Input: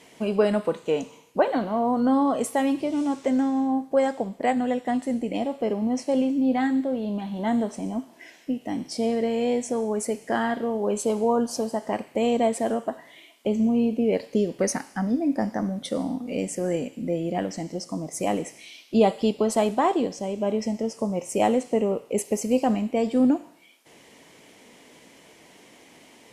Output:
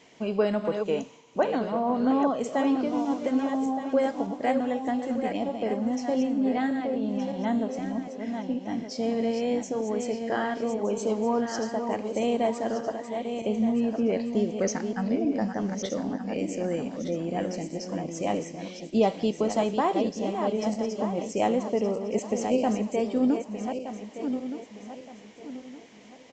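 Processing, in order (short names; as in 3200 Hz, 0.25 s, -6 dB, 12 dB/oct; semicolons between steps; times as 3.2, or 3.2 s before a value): regenerating reverse delay 0.61 s, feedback 56%, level -6.5 dB; downsampling 16000 Hz; gain -3.5 dB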